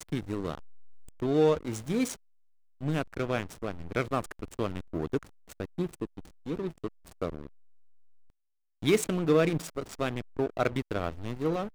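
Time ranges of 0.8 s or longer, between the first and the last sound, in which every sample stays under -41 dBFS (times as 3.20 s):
7.47–8.82 s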